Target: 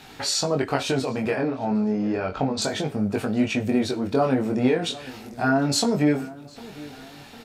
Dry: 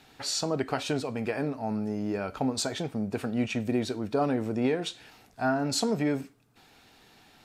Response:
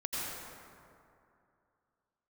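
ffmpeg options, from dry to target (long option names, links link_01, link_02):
-filter_complex "[0:a]asettb=1/sr,asplit=3[link_01][link_02][link_03];[link_01]atrim=end=1.354[link_04];[link_02]atrim=start=1.35:end=2.62,asetpts=PTS-STARTPTS,afade=type=in:duration=0.004:curve=qsin,afade=type=out:start_time=1.266:duration=0.004:curve=qsin,lowpass=4900[link_05];[link_03]atrim=start=2.616[link_06];[link_04][link_05]acrossfade=duration=0.004:curve1=hsin:curve2=qsin[link_07];[link_07][link_06]acrossfade=duration=0.004:curve1=qsin:curve2=hsin,asplit=2[link_08][link_09];[link_09]acompressor=threshold=-43dB:ratio=6,volume=2.5dB[link_10];[link_08][link_10]amix=inputs=2:normalize=0,flanger=delay=19.5:depth=4.3:speed=0.31,asplit=2[link_11][link_12];[link_12]adelay=754,lowpass=frequency=2200:poles=1,volume=-19dB,asplit=2[link_13][link_14];[link_14]adelay=754,lowpass=frequency=2200:poles=1,volume=0.51,asplit=2[link_15][link_16];[link_16]adelay=754,lowpass=frequency=2200:poles=1,volume=0.51,asplit=2[link_17][link_18];[link_18]adelay=754,lowpass=frequency=2200:poles=1,volume=0.51[link_19];[link_11][link_13][link_15][link_17][link_19]amix=inputs=5:normalize=0,volume=7dB"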